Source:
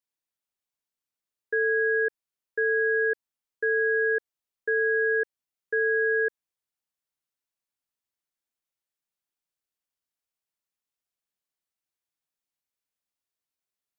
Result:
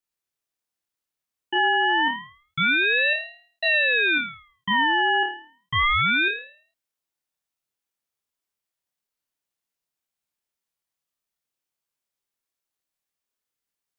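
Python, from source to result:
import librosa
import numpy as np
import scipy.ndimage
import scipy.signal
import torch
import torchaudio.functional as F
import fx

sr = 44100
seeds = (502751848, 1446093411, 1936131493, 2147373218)

y = fx.room_flutter(x, sr, wall_m=4.6, rt60_s=0.48)
y = fx.ring_lfo(y, sr, carrier_hz=1800.0, swing_pct=30, hz=0.29)
y = F.gain(torch.from_numpy(y), 3.5).numpy()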